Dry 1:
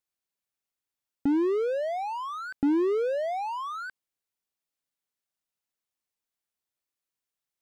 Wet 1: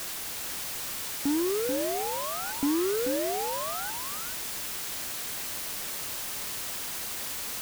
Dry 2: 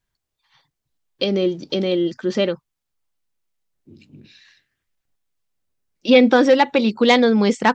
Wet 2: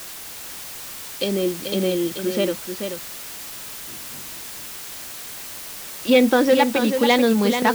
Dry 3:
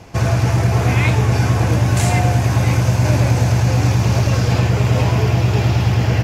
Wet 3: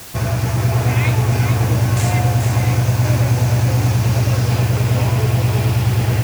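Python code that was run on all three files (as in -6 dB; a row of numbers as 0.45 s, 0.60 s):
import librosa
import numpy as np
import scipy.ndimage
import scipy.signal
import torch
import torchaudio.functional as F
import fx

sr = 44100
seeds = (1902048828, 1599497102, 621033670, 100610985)

y = fx.dmg_noise_colour(x, sr, seeds[0], colour='white', level_db=-33.0)
y = y + 10.0 ** (-7.0 / 20.0) * np.pad(y, (int(435 * sr / 1000.0), 0))[:len(y)]
y = y * 10.0 ** (-3.0 / 20.0)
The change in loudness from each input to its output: -1.5 LU, -5.5 LU, -1.0 LU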